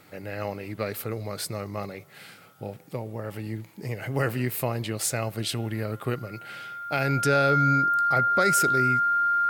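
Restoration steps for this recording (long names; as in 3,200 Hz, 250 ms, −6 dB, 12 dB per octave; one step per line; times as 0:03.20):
notch filter 1,400 Hz, Q 30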